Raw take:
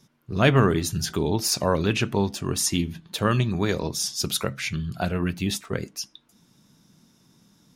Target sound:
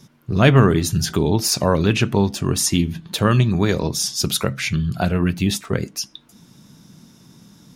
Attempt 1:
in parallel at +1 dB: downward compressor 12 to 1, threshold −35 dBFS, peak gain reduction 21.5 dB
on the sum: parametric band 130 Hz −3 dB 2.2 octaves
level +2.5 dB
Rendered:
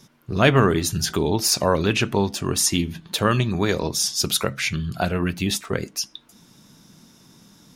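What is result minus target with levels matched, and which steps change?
125 Hz band −3.5 dB
change: parametric band 130 Hz +3.5 dB 2.2 octaves

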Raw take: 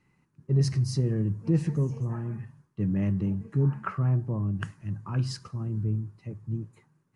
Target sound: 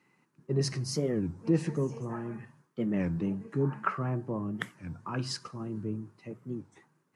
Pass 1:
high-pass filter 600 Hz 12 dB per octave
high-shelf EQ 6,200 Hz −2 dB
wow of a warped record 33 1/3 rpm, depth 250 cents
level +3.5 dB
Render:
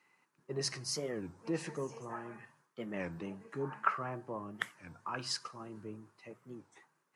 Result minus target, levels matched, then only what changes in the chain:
250 Hz band −5.0 dB
change: high-pass filter 260 Hz 12 dB per octave

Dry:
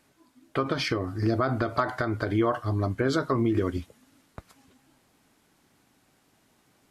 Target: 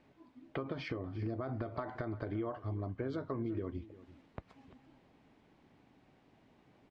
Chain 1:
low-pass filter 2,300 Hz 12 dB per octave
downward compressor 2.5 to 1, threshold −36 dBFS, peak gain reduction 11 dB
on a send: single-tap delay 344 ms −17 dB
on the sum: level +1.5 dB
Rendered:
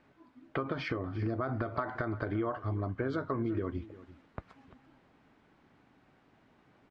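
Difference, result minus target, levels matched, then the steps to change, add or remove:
downward compressor: peak gain reduction −4.5 dB; 1,000 Hz band +2.5 dB
add after low-pass filter: parametric band 1,400 Hz −7.5 dB 0.78 octaves
change: downward compressor 2.5 to 1, threshold −43.5 dBFS, peak gain reduction 15.5 dB

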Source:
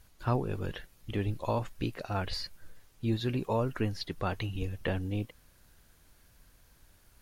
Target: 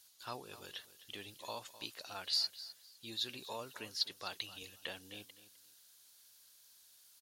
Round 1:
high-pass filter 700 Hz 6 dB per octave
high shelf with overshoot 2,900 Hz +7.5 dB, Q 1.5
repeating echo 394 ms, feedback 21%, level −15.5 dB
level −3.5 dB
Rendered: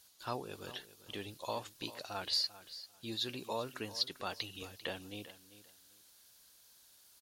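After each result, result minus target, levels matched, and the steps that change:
echo 138 ms late; 500 Hz band +5.5 dB
change: repeating echo 256 ms, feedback 21%, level −15.5 dB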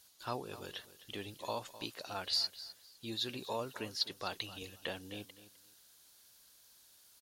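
500 Hz band +5.5 dB
change: high-pass filter 1,900 Hz 6 dB per octave

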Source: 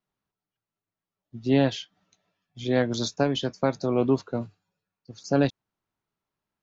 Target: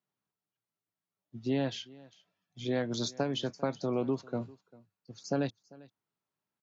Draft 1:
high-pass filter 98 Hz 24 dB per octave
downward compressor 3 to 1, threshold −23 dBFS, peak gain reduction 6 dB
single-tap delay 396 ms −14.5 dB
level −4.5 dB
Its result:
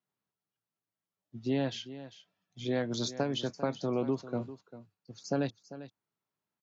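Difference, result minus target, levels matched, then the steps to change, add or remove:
echo-to-direct +8 dB
change: single-tap delay 396 ms −22.5 dB

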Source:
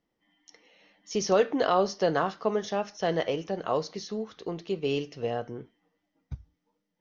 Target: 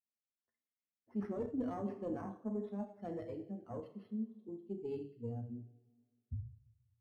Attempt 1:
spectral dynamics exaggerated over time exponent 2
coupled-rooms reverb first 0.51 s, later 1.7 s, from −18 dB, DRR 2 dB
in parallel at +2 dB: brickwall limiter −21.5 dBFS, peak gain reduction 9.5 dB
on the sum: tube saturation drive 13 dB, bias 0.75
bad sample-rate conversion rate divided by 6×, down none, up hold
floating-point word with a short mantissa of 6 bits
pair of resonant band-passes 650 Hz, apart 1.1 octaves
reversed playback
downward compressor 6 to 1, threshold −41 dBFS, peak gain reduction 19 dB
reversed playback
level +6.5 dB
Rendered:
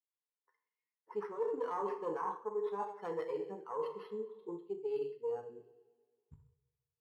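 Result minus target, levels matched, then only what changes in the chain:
125 Hz band −17.5 dB
change: pair of resonant band-passes 160 Hz, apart 1.1 octaves

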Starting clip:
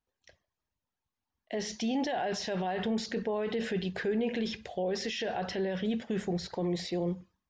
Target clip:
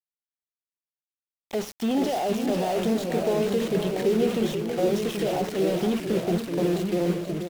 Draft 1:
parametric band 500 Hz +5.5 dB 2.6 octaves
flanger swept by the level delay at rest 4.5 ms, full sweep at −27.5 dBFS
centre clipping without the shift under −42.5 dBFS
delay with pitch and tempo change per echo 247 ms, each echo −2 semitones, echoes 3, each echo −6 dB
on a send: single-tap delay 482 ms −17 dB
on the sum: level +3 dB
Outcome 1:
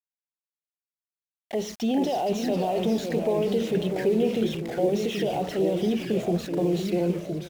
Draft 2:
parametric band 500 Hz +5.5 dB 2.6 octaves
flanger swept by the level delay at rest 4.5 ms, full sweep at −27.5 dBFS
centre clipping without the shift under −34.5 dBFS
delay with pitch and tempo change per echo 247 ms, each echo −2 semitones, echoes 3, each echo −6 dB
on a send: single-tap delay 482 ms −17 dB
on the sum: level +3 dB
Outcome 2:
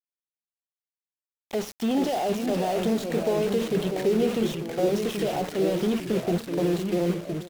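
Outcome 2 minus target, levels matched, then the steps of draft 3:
echo-to-direct −9 dB
parametric band 500 Hz +5.5 dB 2.6 octaves
flanger swept by the level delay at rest 4.5 ms, full sweep at −27.5 dBFS
centre clipping without the shift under −34.5 dBFS
delay with pitch and tempo change per echo 247 ms, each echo −2 semitones, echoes 3, each echo −6 dB
on a send: single-tap delay 482 ms −8 dB
on the sum: level +3 dB

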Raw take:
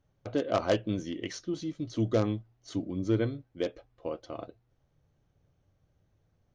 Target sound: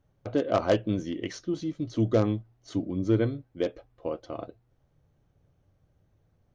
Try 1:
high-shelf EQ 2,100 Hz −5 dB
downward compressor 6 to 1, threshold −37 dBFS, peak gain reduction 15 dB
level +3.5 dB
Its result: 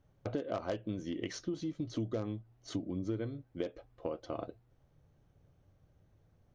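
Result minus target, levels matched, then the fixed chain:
downward compressor: peak gain reduction +15 dB
high-shelf EQ 2,100 Hz −5 dB
level +3.5 dB

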